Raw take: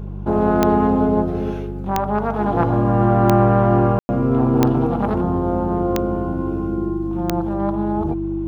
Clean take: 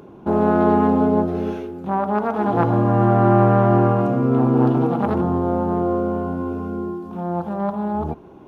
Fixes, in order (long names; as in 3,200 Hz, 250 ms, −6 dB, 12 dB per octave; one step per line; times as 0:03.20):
click removal
hum removal 49.4 Hz, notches 4
notch filter 330 Hz, Q 30
ambience match 0:03.99–0:04.09